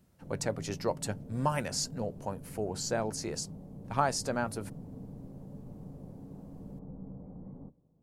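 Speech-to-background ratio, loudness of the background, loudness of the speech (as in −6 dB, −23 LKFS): 12.0 dB, −46.5 LKFS, −34.5 LKFS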